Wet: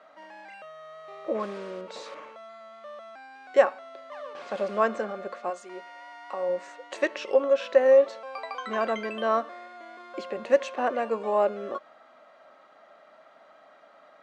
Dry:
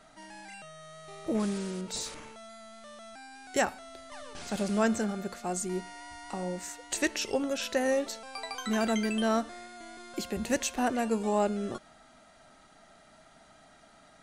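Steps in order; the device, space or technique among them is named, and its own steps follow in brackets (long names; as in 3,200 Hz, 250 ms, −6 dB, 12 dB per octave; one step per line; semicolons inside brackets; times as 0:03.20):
0:05.49–0:06.48: high-pass filter 990 Hz → 310 Hz 6 dB per octave
tin-can telephone (band-pass filter 400–2,600 Hz; hollow resonant body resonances 550/1,100 Hz, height 12 dB, ringing for 40 ms)
level +2 dB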